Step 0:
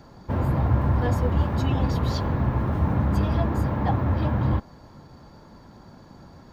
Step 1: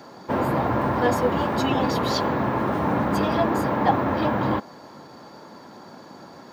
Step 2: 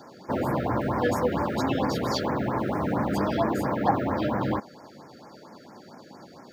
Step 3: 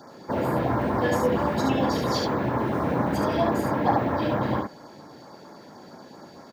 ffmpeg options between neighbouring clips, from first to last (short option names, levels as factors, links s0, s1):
-af "highpass=280,volume=2.51"
-af "afftfilt=real='re*(1-between(b*sr/1024,880*pow(3600/880,0.5+0.5*sin(2*PI*4.4*pts/sr))/1.41,880*pow(3600/880,0.5+0.5*sin(2*PI*4.4*pts/sr))*1.41))':imag='im*(1-between(b*sr/1024,880*pow(3600/880,0.5+0.5*sin(2*PI*4.4*pts/sr))/1.41,880*pow(3600/880,0.5+0.5*sin(2*PI*4.4*pts/sr))*1.41))':win_size=1024:overlap=0.75,volume=0.708"
-af "aecho=1:1:34|72:0.398|0.668"